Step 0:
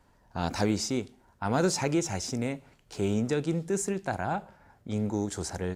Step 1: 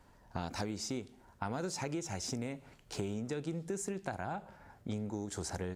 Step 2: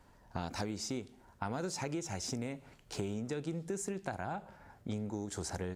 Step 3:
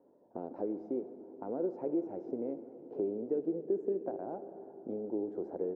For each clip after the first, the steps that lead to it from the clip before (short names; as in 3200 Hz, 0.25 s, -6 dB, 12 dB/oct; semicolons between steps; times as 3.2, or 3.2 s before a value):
compressor 10:1, threshold -35 dBFS, peak gain reduction 14.5 dB; gain +1 dB
nothing audible
Butterworth band-pass 410 Hz, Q 1.4; reverb RT60 4.9 s, pre-delay 43 ms, DRR 11 dB; mismatched tape noise reduction decoder only; gain +7 dB